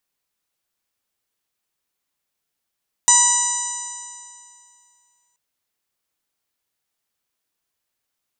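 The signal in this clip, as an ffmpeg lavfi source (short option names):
-f lavfi -i "aevalsrc='0.126*pow(10,-3*t/2.34)*sin(2*PI*967.92*t)+0.0501*pow(10,-3*t/2.34)*sin(2*PI*1941.34*t)+0.0316*pow(10,-3*t/2.34)*sin(2*PI*2925.7*t)+0.0531*pow(10,-3*t/2.34)*sin(2*PI*3926.35*t)+0.0299*pow(10,-3*t/2.34)*sin(2*PI*4948.5*t)+0.188*pow(10,-3*t/2.34)*sin(2*PI*5997.15*t)+0.237*pow(10,-3*t/2.34)*sin(2*PI*7077.09*t)+0.15*pow(10,-3*t/2.34)*sin(2*PI*8192.86*t)':d=2.28:s=44100"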